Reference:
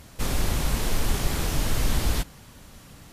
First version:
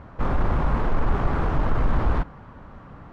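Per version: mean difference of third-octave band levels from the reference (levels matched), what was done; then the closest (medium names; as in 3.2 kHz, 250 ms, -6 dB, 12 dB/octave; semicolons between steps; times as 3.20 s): 11.0 dB: resonant low-pass 1.2 kHz, resonance Q 1.7; in parallel at -3.5 dB: hard clipper -24 dBFS, distortion -9 dB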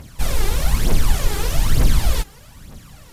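2.5 dB: peaking EQ 150 Hz +3.5 dB 0.27 oct; phaser 1.1 Hz, delay 2.6 ms, feedback 63%; trim +1.5 dB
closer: second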